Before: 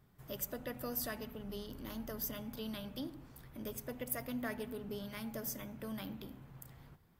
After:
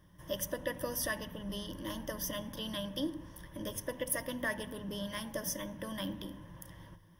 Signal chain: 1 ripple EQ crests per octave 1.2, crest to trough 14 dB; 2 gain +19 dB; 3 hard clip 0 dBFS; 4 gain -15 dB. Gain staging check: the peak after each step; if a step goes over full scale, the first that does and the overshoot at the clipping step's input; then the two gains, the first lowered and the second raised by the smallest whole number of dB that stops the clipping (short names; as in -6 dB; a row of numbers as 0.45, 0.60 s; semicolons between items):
-21.0, -2.0, -2.0, -17.0 dBFS; no overload